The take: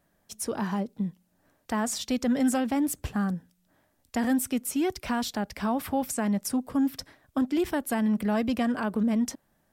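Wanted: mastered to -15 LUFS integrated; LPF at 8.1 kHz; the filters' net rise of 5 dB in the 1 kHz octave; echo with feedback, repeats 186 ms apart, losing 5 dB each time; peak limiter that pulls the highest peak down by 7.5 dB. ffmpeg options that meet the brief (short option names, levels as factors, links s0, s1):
-af "lowpass=8100,equalizer=f=1000:t=o:g=6.5,alimiter=limit=0.0841:level=0:latency=1,aecho=1:1:186|372|558|744|930|1116|1302:0.562|0.315|0.176|0.0988|0.0553|0.031|0.0173,volume=5.31"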